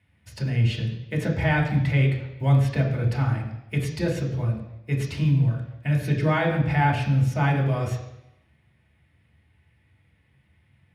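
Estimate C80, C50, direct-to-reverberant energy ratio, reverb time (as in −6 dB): 8.5 dB, 6.0 dB, −3.0 dB, 0.90 s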